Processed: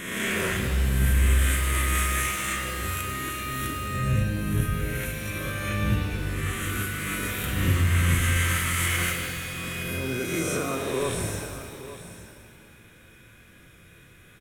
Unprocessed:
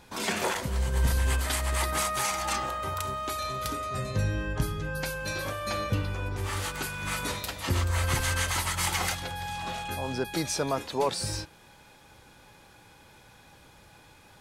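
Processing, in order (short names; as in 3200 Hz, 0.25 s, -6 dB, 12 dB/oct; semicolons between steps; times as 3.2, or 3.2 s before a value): spectral swells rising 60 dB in 1.37 s; fixed phaser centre 2000 Hz, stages 4; on a send: echo 0.868 s -14 dB; on the sum: shimmer reverb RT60 1.9 s, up +7 st, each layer -8 dB, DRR 2.5 dB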